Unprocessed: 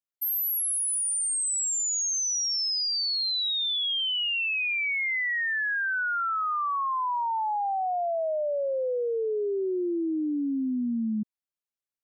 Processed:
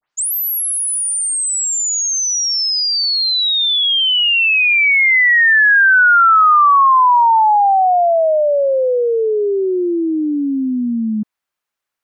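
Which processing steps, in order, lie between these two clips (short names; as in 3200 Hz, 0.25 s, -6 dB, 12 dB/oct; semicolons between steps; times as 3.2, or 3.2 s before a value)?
tape start at the beginning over 0.34 s; bell 1300 Hz +10 dB 2.5 oct; gain +8.5 dB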